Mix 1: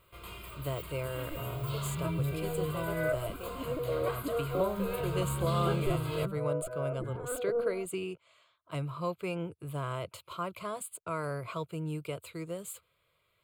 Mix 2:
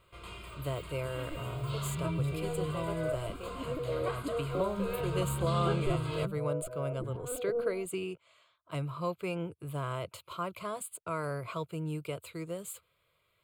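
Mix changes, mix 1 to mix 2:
first sound: add Savitzky-Golay smoothing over 9 samples
second sound: add parametric band 1,900 Hz −11 dB 2 octaves

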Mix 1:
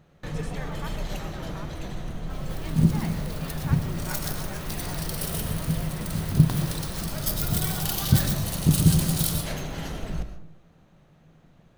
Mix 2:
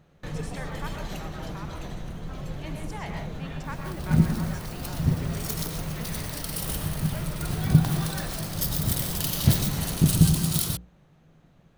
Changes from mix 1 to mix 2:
speech: send +10.0 dB
first sound: send off
second sound: entry +1.35 s

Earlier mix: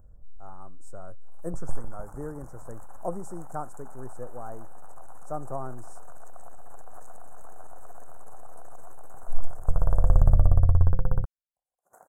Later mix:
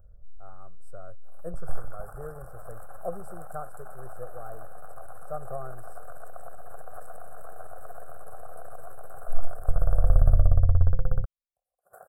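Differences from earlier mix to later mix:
second sound +7.5 dB
master: add phaser with its sweep stopped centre 1,400 Hz, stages 8

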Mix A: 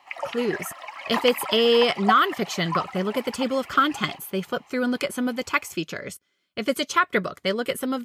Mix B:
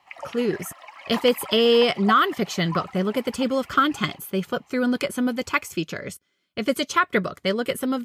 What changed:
speech: add low-shelf EQ 260 Hz +5 dB
background −5.5 dB

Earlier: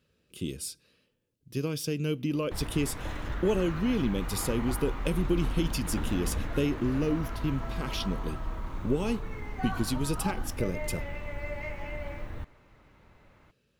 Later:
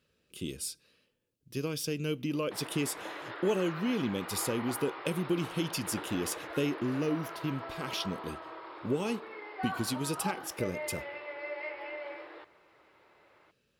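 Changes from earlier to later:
speech: add low-shelf EQ 280 Hz −6.5 dB
background: add linear-phase brick-wall band-pass 300–5,400 Hz

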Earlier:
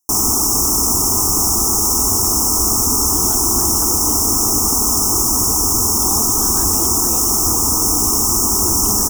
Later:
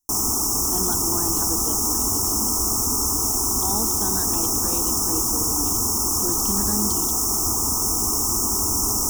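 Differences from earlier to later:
speech: entry −2.40 s
background −6.5 dB

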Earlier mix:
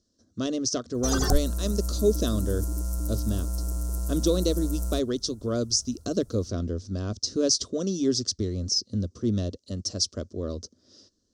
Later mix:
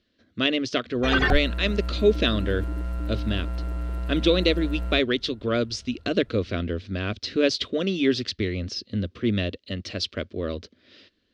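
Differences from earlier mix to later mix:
background: add high-shelf EQ 3,900 Hz −9 dB
master: remove drawn EQ curve 110 Hz 0 dB, 1,200 Hz −6 dB, 2,300 Hz −27 dB, 3,900 Hz −9 dB, 5,800 Hz +14 dB

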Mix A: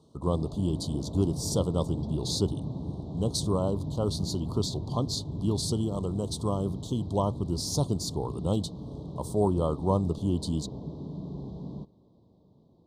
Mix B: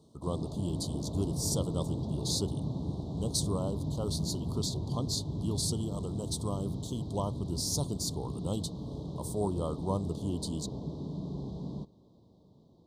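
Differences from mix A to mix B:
speech −7.0 dB
master: add high-shelf EQ 4,500 Hz +11 dB

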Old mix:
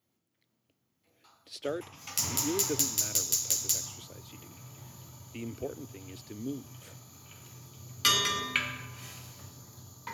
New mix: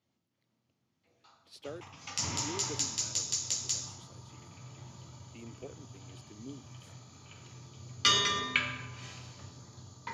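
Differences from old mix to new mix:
speech −9.0 dB
background: add low-pass filter 6,300 Hz 24 dB per octave

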